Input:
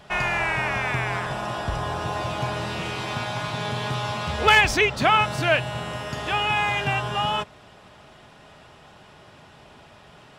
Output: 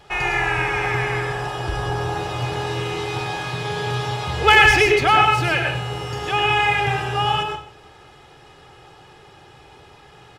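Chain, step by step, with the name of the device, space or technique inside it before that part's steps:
microphone above a desk (comb filter 2.4 ms, depth 68%; convolution reverb RT60 0.45 s, pre-delay 92 ms, DRR 2 dB)
level −1 dB

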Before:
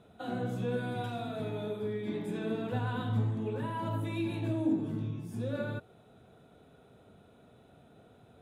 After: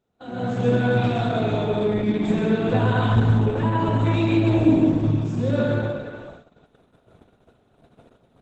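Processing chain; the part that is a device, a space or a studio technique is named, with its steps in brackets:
0:03.16–0:03.89: high-pass filter 59 Hz 24 dB per octave
speakerphone in a meeting room (convolution reverb RT60 0.80 s, pre-delay 107 ms, DRR 1.5 dB; far-end echo of a speakerphone 360 ms, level −9 dB; automatic gain control gain up to 12 dB; noise gate −41 dBFS, range −17 dB; Opus 12 kbit/s 48,000 Hz)

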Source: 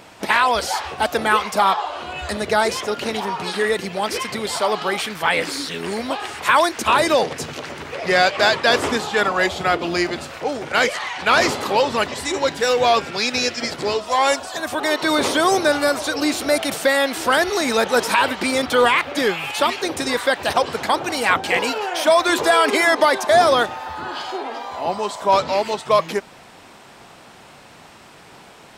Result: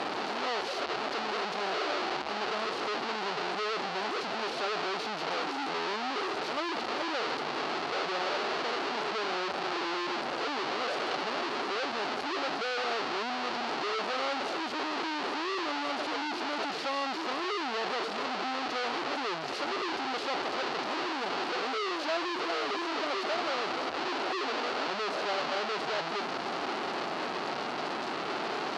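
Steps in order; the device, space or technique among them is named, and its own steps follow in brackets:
inverse Chebyshev band-stop filter 810–7,700 Hz, stop band 40 dB
home computer beeper (sign of each sample alone; loudspeaker in its box 500–5,100 Hz, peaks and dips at 500 Hz −4 dB, 760 Hz +5 dB, 1,300 Hz +4 dB, 2,800 Hz +3 dB, 4,400 Hz +6 dB)

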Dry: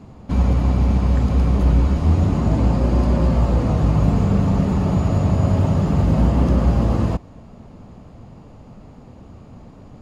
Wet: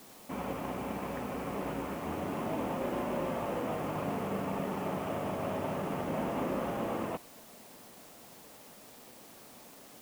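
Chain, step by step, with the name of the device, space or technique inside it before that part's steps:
army field radio (band-pass filter 370–3,000 Hz; variable-slope delta modulation 16 kbit/s; white noise bed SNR 19 dB)
level −6.5 dB

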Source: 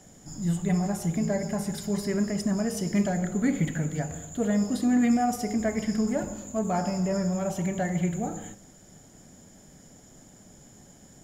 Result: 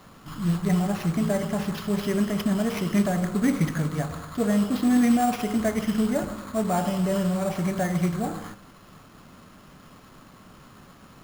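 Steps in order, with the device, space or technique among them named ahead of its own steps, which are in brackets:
early companding sampler (sample-rate reduction 8,200 Hz, jitter 0%; log-companded quantiser 6 bits)
level +2.5 dB

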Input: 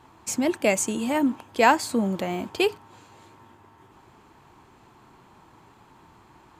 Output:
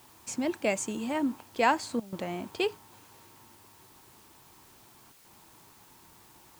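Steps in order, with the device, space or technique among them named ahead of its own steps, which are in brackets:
worn cassette (low-pass filter 8,300 Hz; tape wow and flutter 25 cents; tape dropouts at 0:02.00/0:05.12, 124 ms −17 dB; white noise bed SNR 24 dB)
level −6.5 dB

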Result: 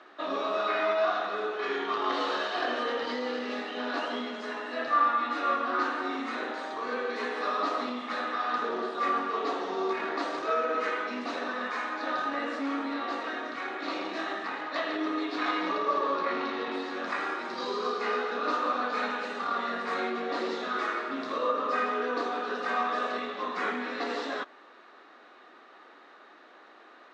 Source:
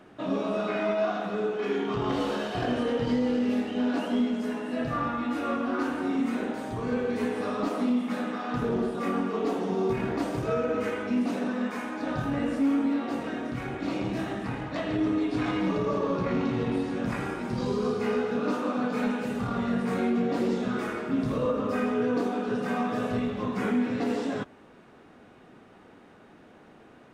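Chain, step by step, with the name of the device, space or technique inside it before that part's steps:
phone speaker on a table (loudspeaker in its box 350–6,500 Hz, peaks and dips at 450 Hz −5 dB, 1,200 Hz +8 dB, 1,800 Hz +6 dB, 4,000 Hz +9 dB)
0:15.72–0:16.71: low-pass filter 6,400 Hz 12 dB per octave

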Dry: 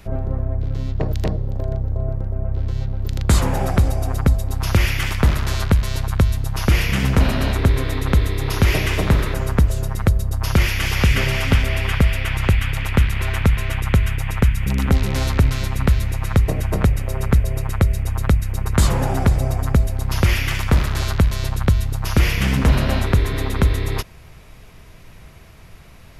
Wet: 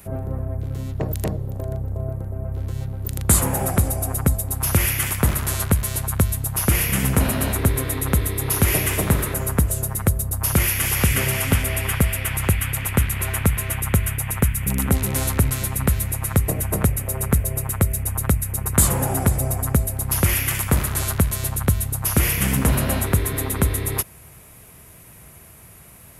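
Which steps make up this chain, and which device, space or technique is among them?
budget condenser microphone (high-pass filter 69 Hz; high shelf with overshoot 7,000 Hz +13.5 dB, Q 1.5)
level −1.5 dB

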